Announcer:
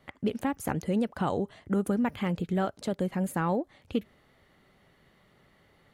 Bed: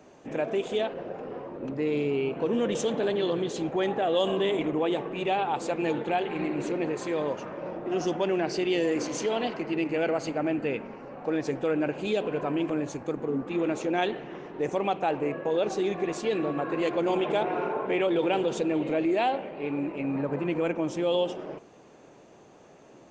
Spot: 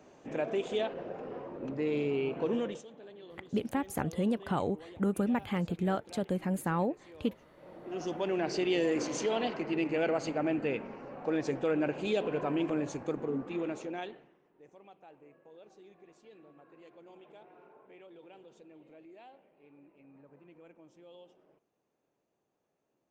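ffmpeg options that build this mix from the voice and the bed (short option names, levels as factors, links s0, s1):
-filter_complex "[0:a]adelay=3300,volume=0.75[s0];[1:a]volume=6.68,afade=t=out:st=2.53:d=0.3:silence=0.105925,afade=t=in:st=7.54:d=1.03:silence=0.0944061,afade=t=out:st=13.1:d=1.25:silence=0.0530884[s1];[s0][s1]amix=inputs=2:normalize=0"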